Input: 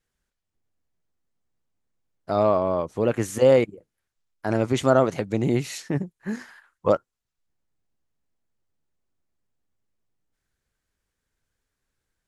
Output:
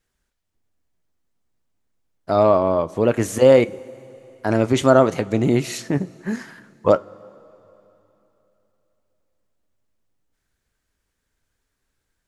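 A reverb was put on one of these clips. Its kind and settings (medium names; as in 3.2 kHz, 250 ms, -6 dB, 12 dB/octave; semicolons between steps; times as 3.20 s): two-slope reverb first 0.24 s, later 3.3 s, from -18 dB, DRR 14 dB; trim +4.5 dB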